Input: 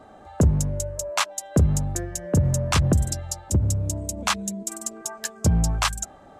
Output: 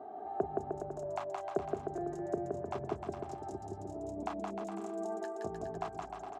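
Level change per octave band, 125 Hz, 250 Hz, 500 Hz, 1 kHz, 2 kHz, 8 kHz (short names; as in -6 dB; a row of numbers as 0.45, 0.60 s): -26.0, -13.5, -4.5, -7.0, -20.0, -32.0 dB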